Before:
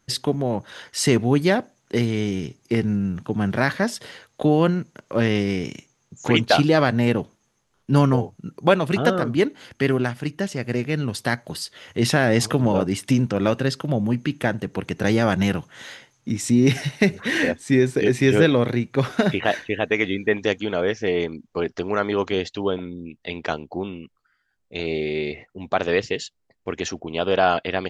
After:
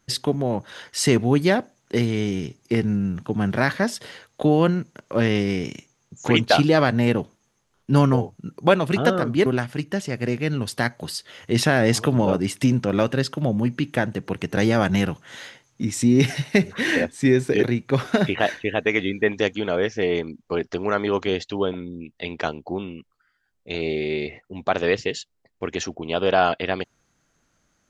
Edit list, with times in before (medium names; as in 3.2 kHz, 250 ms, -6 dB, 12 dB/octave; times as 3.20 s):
9.46–9.93 s: delete
18.10–18.68 s: delete